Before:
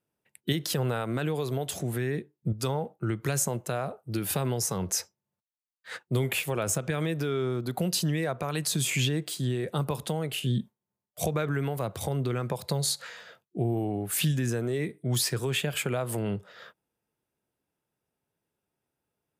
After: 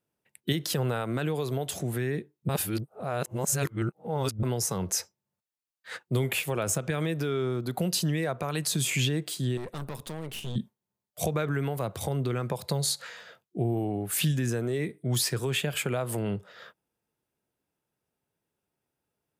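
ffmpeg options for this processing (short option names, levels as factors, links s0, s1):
-filter_complex "[0:a]asettb=1/sr,asplit=3[s0][s1][s2];[s0]atrim=end=9.574[s3];[s1]atrim=start=9.57:end=10.56,asetpts=PTS-STARTPTS,afade=t=in:d=0.004:c=qsin,afade=t=out:st=0.986:d=0.004:c=qsin,aeval=exprs='(tanh(44.7*val(0)+0.75)-tanh(0.75))/44.7':c=same[s4];[s2]atrim=start=10.556[s5];[s3][s4]acrossfade=d=0.004:c1=hsin:c2=qsin[s6];[s6][s5]acrossfade=d=0.004:c1=qsin:c2=hsin,asplit=3[s7][s8][s9];[s7]atrim=end=2.492[s10];[s8]atrim=start=2.488:end=4.432,asetpts=PTS-STARTPTS,areverse[s11];[s9]atrim=start=4.428[s12];[s10][s11]acrossfade=d=0.004:c1=hsin:c2=hsin[s13];[s13][s12]acrossfade=d=0.004:c1=hsin:c2=hsin"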